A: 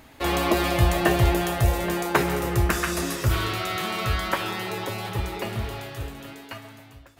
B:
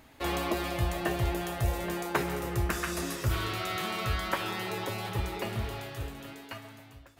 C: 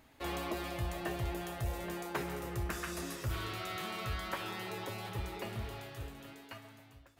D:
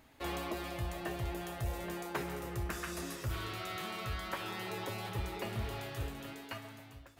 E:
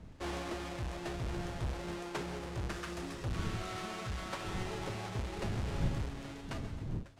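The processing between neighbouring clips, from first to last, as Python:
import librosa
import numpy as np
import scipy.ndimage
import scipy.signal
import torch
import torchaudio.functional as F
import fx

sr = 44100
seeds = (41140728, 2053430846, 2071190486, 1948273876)

y1 = fx.rider(x, sr, range_db=3, speed_s=0.5)
y1 = y1 * 10.0 ** (-7.0 / 20.0)
y2 = 10.0 ** (-19.5 / 20.0) * np.tanh(y1 / 10.0 ** (-19.5 / 20.0))
y2 = y2 * 10.0 ** (-6.5 / 20.0)
y3 = fx.rider(y2, sr, range_db=5, speed_s=0.5)
y4 = fx.halfwave_hold(y3, sr)
y4 = fx.dmg_wind(y4, sr, seeds[0], corner_hz=140.0, level_db=-38.0)
y4 = scipy.signal.sosfilt(scipy.signal.butter(2, 7900.0, 'lowpass', fs=sr, output='sos'), y4)
y4 = y4 * 10.0 ** (-5.0 / 20.0)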